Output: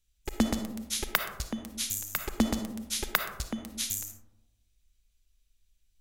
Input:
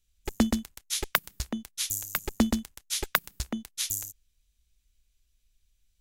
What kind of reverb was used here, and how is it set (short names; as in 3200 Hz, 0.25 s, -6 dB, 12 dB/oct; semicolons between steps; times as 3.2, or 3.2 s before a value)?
digital reverb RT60 1 s, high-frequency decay 0.3×, pre-delay 15 ms, DRR 6 dB; gain -2 dB